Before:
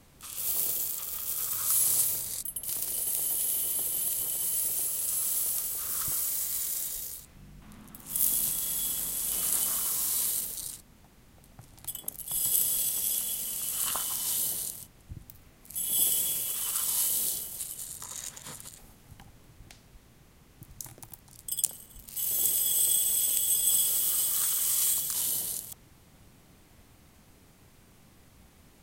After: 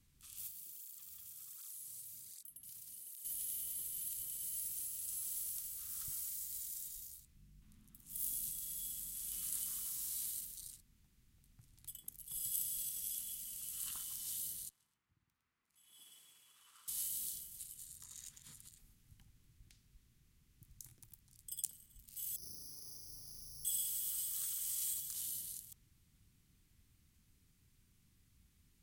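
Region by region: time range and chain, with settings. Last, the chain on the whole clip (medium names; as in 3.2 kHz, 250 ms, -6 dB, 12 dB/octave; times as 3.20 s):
0.47–3.25 s: compression 4:1, threshold -32 dBFS + cancelling through-zero flanger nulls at 1.3 Hz, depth 3.6 ms
6.35–9.15 s: peaking EQ 1.6 kHz -3.5 dB 2.4 oct + hard clipper -16 dBFS
14.69–16.88 s: band-pass filter 1.1 kHz, Q 1.6 + delay 108 ms -4.5 dB
22.36–23.65 s: low-pass 1.1 kHz 24 dB/octave + careless resampling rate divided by 8×, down none, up zero stuff + flutter echo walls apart 6.2 m, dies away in 1.3 s
whole clip: amplifier tone stack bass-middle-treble 6-0-2; band-stop 600 Hz, Q 12; trim +1.5 dB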